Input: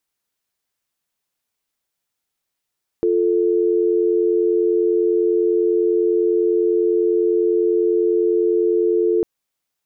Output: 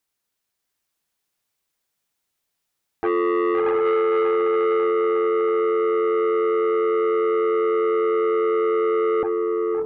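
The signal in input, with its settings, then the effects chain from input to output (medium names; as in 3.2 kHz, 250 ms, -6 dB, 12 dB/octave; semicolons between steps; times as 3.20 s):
call progress tone dial tone, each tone -17 dBFS 6.20 s
echo that smears into a reverb 699 ms, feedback 44%, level -3 dB; transformer saturation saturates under 850 Hz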